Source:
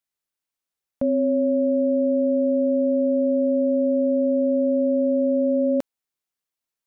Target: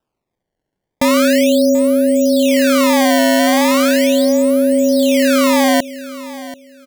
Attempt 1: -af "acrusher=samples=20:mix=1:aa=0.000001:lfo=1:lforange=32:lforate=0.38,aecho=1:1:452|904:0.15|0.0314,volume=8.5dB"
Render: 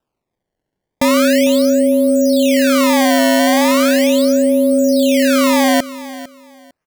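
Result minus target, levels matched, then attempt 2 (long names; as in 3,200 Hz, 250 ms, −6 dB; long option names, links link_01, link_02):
echo 283 ms early
-af "acrusher=samples=20:mix=1:aa=0.000001:lfo=1:lforange=32:lforate=0.38,aecho=1:1:735|1470:0.15|0.0314,volume=8.5dB"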